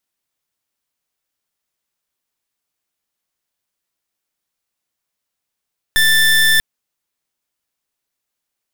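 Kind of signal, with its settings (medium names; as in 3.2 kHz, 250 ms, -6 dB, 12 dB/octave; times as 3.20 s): pulse 1.77 kHz, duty 26% -12 dBFS 0.64 s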